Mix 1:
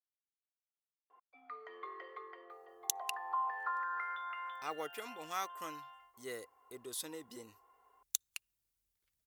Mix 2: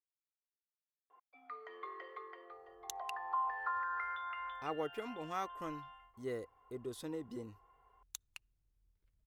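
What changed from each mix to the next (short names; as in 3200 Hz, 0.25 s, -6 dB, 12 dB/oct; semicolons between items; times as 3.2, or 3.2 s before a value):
speech: add tilt -4 dB/oct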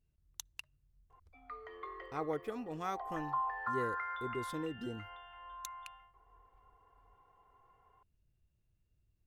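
speech: entry -2.50 s; master: add low shelf 250 Hz +7.5 dB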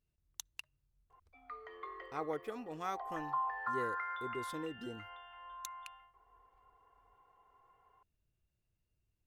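master: add low shelf 250 Hz -7.5 dB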